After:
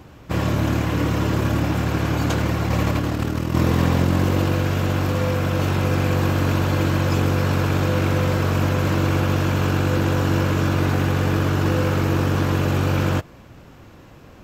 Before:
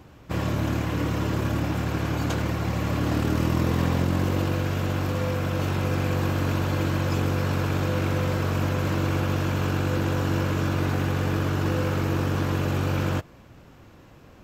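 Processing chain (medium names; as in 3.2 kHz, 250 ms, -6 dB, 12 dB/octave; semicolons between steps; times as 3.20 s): 2.67–3.55 s: compressor with a negative ratio -26 dBFS, ratio -0.5; trim +5 dB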